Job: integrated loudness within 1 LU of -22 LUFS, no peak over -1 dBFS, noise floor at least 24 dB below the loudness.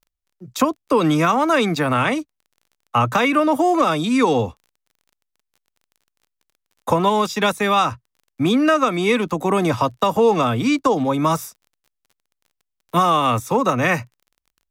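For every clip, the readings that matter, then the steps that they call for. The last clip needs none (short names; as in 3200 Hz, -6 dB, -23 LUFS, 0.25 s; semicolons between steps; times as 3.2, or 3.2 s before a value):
ticks 26/s; loudness -18.5 LUFS; peak -3.5 dBFS; loudness target -22.0 LUFS
-> de-click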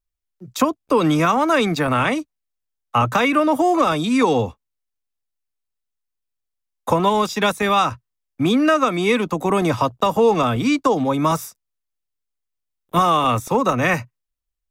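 ticks 0.27/s; loudness -19.0 LUFS; peak -3.5 dBFS; loudness target -22.0 LUFS
-> gain -3 dB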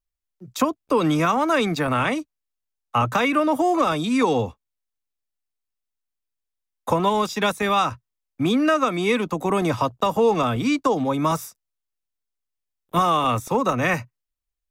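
loudness -22.0 LUFS; peak -6.5 dBFS; noise floor -83 dBFS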